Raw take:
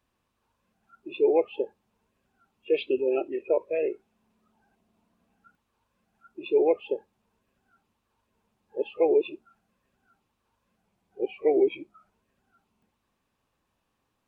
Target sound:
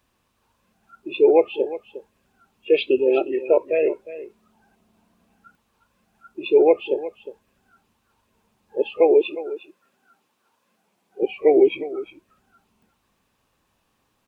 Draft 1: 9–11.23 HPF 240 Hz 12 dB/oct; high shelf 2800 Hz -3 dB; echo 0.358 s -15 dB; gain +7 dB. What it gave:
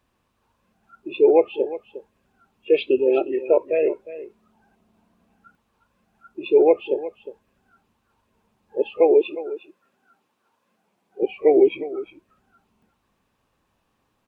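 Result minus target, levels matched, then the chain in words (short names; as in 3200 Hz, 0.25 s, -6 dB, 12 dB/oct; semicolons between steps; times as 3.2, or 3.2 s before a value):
4000 Hz band -3.5 dB
9–11.23 HPF 240 Hz 12 dB/oct; high shelf 2800 Hz +3.5 dB; echo 0.358 s -15 dB; gain +7 dB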